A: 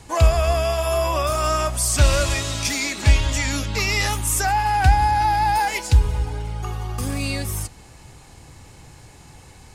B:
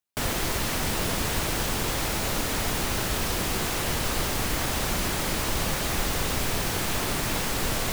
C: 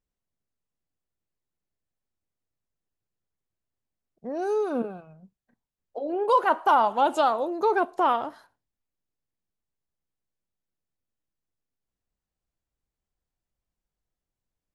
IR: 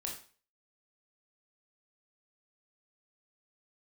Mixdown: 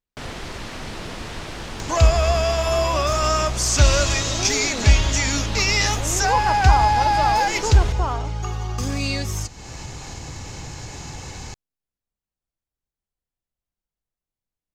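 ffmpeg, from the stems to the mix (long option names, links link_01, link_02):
-filter_complex "[0:a]highshelf=frequency=7900:width_type=q:width=3:gain=-7.5,acompressor=mode=upward:threshold=-24dB:ratio=2.5,adelay=1800,volume=0.5dB[link_01];[1:a]lowpass=5500,volume=-7dB,asplit=2[link_02][link_03];[link_03]volume=-7.5dB[link_04];[2:a]volume=-4.5dB[link_05];[3:a]atrim=start_sample=2205[link_06];[link_04][link_06]afir=irnorm=-1:irlink=0[link_07];[link_01][link_02][link_05][link_07]amix=inputs=4:normalize=0"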